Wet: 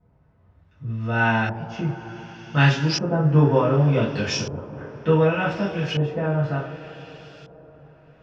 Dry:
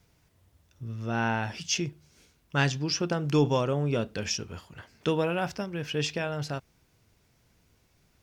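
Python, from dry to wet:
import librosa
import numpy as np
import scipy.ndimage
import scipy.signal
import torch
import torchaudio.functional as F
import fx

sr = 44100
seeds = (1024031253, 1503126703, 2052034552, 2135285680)

y = fx.rev_double_slope(x, sr, seeds[0], early_s=0.33, late_s=4.9, knee_db=-21, drr_db=-8.5)
y = fx.filter_lfo_lowpass(y, sr, shape='saw_up', hz=0.67, low_hz=760.0, high_hz=4800.0, q=0.94)
y = y * librosa.db_to_amplitude(-2.0)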